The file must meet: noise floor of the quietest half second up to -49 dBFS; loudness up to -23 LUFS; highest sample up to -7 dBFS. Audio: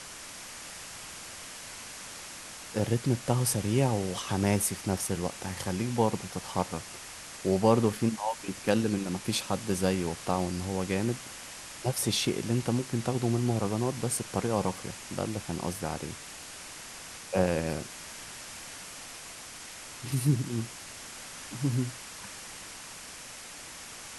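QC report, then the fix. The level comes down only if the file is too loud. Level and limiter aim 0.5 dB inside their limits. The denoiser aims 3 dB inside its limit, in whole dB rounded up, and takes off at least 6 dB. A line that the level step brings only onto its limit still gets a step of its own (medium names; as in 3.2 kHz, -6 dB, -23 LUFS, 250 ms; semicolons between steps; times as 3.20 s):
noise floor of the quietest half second -45 dBFS: fail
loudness -31.5 LUFS: pass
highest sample -8.5 dBFS: pass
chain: noise reduction 7 dB, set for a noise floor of -45 dBFS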